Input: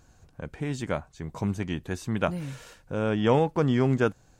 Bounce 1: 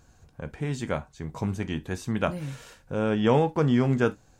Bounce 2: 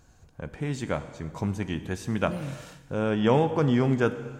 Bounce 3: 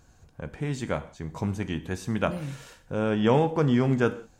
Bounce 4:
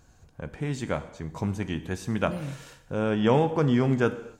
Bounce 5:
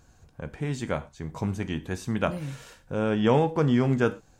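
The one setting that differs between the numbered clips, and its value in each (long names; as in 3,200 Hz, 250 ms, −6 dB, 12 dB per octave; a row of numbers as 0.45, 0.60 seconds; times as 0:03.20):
reverb whose tail is shaped and stops, gate: 90, 520, 210, 310, 140 milliseconds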